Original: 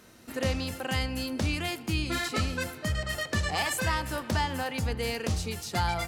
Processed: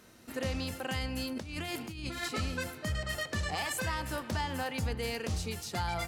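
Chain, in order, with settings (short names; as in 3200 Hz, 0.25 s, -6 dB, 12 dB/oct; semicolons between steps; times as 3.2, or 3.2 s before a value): 1.32–2.23 negative-ratio compressor -36 dBFS, ratio -1; limiter -21 dBFS, peak gain reduction 3.5 dB; gain -3 dB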